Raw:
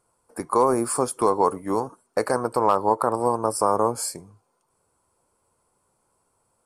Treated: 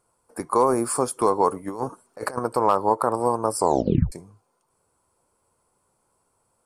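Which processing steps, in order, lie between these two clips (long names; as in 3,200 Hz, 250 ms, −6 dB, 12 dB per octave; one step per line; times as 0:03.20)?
0:01.68–0:02.39: compressor whose output falls as the input rises −28 dBFS, ratio −0.5
0:03.58: tape stop 0.54 s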